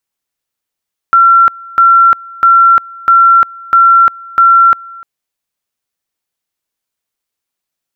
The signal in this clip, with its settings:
tone at two levels in turn 1,360 Hz −2.5 dBFS, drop 24.5 dB, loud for 0.35 s, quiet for 0.30 s, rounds 6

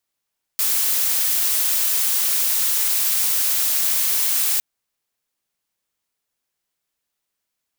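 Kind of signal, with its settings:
noise blue, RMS −19.5 dBFS 4.01 s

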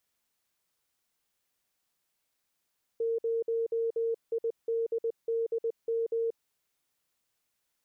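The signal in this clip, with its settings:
Morse code "0IDDM" 20 words per minute 458 Hz −26.5 dBFS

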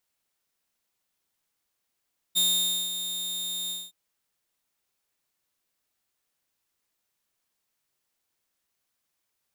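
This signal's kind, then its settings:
note with an ADSR envelope saw 3,660 Hz, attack 24 ms, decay 519 ms, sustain −10 dB, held 1.35 s, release 216 ms −17.5 dBFS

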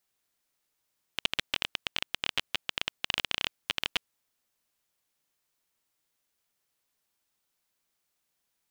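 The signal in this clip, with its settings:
Geiger counter clicks 17 per second −9.5 dBFS 3.07 s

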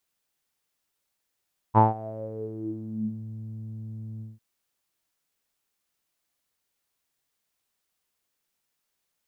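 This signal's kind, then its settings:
subtractive voice saw A2 12 dB per octave, low-pass 170 Hz, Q 12, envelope 2.5 octaves, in 1.51 s, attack 36 ms, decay 0.16 s, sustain −22 dB, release 0.18 s, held 2.47 s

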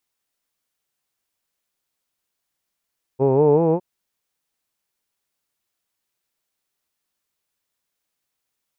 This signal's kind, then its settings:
vowel from formants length 0.61 s, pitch 128 Hz, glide +5.5 semitones, F1 440 Hz, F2 890 Hz, F3 2,500 Hz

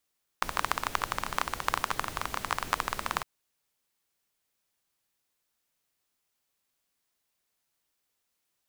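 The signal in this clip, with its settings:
rain-like ticks over hiss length 2.81 s, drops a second 18, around 1,100 Hz, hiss −8 dB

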